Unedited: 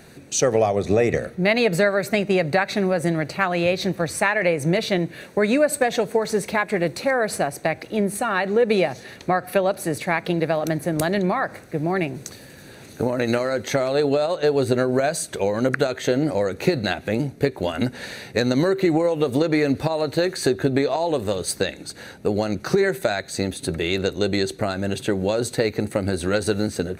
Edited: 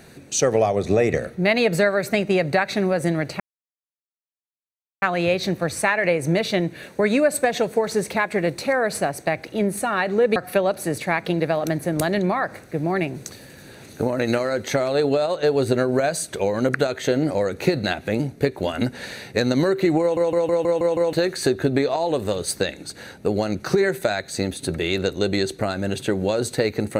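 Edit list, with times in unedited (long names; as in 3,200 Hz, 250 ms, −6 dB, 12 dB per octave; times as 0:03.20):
0:03.40: splice in silence 1.62 s
0:08.74–0:09.36: remove
0:19.01: stutter in place 0.16 s, 7 plays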